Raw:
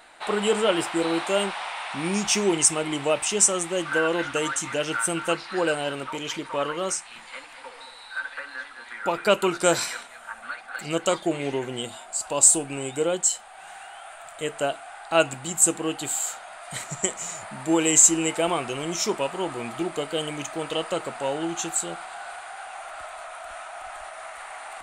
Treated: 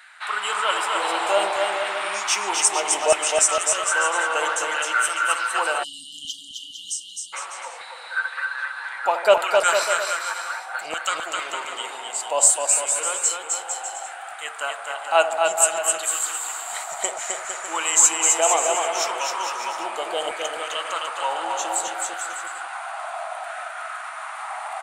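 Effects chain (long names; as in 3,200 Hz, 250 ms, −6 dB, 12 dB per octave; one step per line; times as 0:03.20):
delay with a band-pass on its return 77 ms, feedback 70%, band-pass 630 Hz, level −11.5 dB
auto-filter high-pass saw down 0.64 Hz 630–1,600 Hz
on a send: bouncing-ball delay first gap 260 ms, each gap 0.75×, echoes 5
on the sum: time-frequency box erased 0:05.83–0:07.33, 280–2,800 Hz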